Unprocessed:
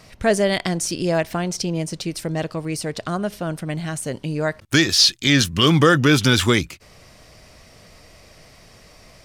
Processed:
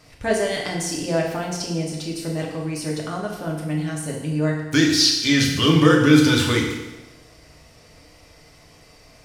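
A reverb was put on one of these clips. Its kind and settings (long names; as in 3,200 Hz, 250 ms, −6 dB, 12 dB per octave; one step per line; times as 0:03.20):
feedback delay network reverb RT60 1.1 s, low-frequency decay 0.95×, high-frequency decay 0.9×, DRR −2.5 dB
level −6.5 dB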